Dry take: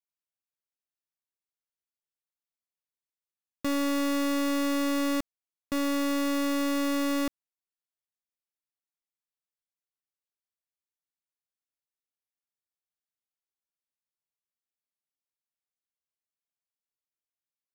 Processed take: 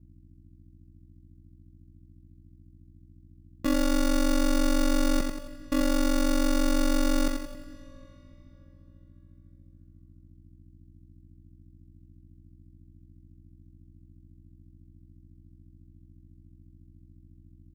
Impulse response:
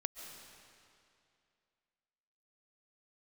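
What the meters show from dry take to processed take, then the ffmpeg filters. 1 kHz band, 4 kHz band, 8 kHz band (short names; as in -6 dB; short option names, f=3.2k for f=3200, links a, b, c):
-0.5 dB, +1.0 dB, +3.0 dB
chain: -filter_complex "[0:a]lowshelf=f=320:g=5,asplit=2[a][b];[b]aecho=0:1:90|180|270|360|450|540:0.562|0.27|0.13|0.0622|0.0299|0.0143[c];[a][c]amix=inputs=2:normalize=0,aeval=exprs='val(0)+0.00282*(sin(2*PI*60*n/s)+sin(2*PI*2*60*n/s)/2+sin(2*PI*3*60*n/s)/3+sin(2*PI*4*60*n/s)/4+sin(2*PI*5*60*n/s)/5)':c=same,aecho=1:1:10|53:0.158|0.178,aeval=exprs='val(0)*sin(2*PI*23*n/s)':c=same,asplit=2[d][e];[1:a]atrim=start_sample=2205,asetrate=28224,aresample=44100[f];[e][f]afir=irnorm=-1:irlink=0,volume=-14dB[g];[d][g]amix=inputs=2:normalize=0,volume=1dB"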